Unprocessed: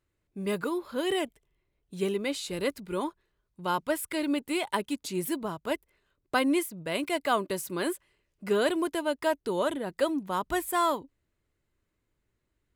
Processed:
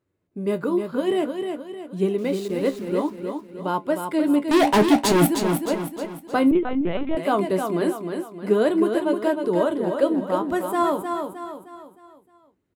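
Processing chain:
Bessel high-pass filter 170 Hz, order 2
tilt shelving filter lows +7.5 dB
0:04.51–0:05.27: leveller curve on the samples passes 5
flanger 0.54 Hz, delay 9.8 ms, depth 5.5 ms, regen +57%
0:02.18–0:02.89: centre clipping without the shift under −48 dBFS
repeating echo 309 ms, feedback 43%, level −6 dB
0:06.51–0:07.17: linear-prediction vocoder at 8 kHz pitch kept
level +7 dB

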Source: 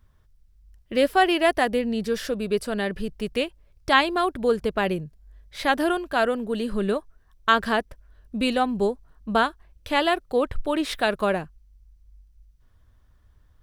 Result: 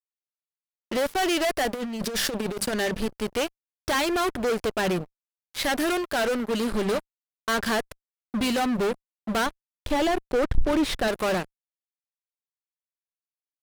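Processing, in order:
high-shelf EQ 2,800 Hz +5 dB
mains-hum notches 50/100/150/200 Hz
fuzz pedal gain 30 dB, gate −36 dBFS
0:01.74–0:02.73: compressor whose output falls as the input rises −19 dBFS, ratio −0.5
0:09.46–0:11.08: spectral tilt −2 dB per octave
level −8.5 dB

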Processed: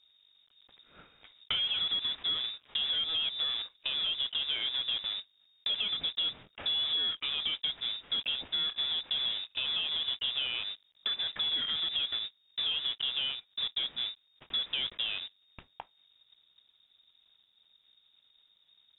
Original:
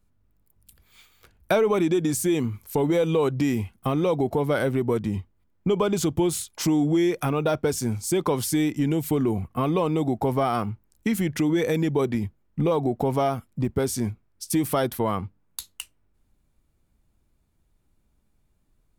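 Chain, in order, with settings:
one scale factor per block 3 bits
downward compressor 2 to 1, threshold −40 dBFS, peak gain reduction 13 dB
parametric band 320 Hz +4 dB 2.4 octaves
voice inversion scrambler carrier 3,700 Hz
high-frequency loss of the air 110 metres

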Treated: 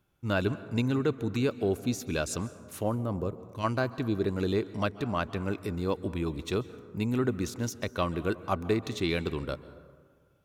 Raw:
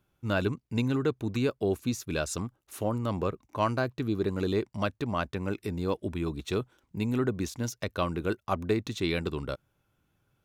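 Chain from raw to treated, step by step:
0:02.94–0:03.63: parametric band 5,900 Hz → 680 Hz −13.5 dB 2.7 octaves
dense smooth reverb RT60 1.7 s, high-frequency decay 0.4×, pre-delay 120 ms, DRR 15 dB

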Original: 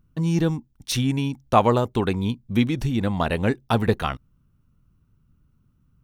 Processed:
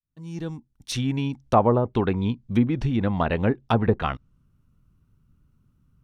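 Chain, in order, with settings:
fade in at the beginning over 1.46 s
treble cut that deepens with the level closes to 1,000 Hz, closed at −15 dBFS

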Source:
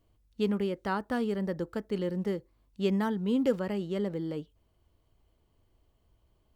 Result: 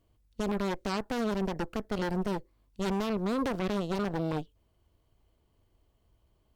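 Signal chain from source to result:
brickwall limiter −25 dBFS, peak gain reduction 10 dB
harmonic generator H 4 −6 dB, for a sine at −25 dBFS

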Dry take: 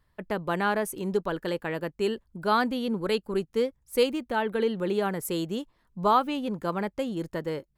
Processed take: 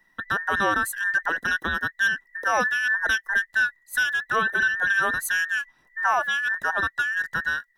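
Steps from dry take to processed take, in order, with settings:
frequency inversion band by band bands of 2,000 Hz
brickwall limiter −18 dBFS, peak gain reduction 7.5 dB
level +5 dB

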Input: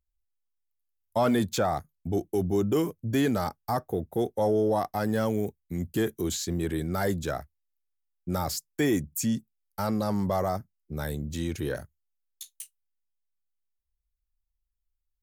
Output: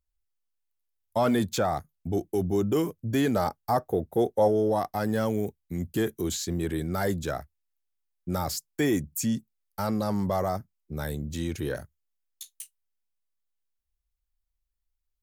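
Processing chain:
0:03.33–0:04.48: dynamic equaliser 580 Hz, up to +5 dB, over −36 dBFS, Q 0.87

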